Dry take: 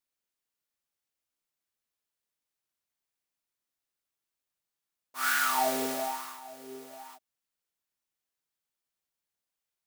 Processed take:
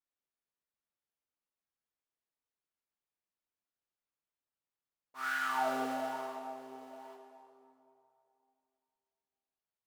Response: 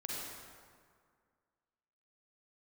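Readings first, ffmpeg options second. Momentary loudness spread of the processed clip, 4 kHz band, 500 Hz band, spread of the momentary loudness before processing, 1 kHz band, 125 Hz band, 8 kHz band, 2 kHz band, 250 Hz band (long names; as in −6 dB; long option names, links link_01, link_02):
20 LU, −10.5 dB, −4.0 dB, 20 LU, −4.0 dB, −4.5 dB, −17.0 dB, −5.5 dB, −3.0 dB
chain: -filter_complex "[0:a]lowpass=frequency=1400:poles=1,asplit=2[link_01][link_02];[1:a]atrim=start_sample=2205,asetrate=29547,aresample=44100,lowshelf=frequency=430:gain=-7[link_03];[link_02][link_03]afir=irnorm=-1:irlink=0,volume=-3dB[link_04];[link_01][link_04]amix=inputs=2:normalize=0,volume=-7dB"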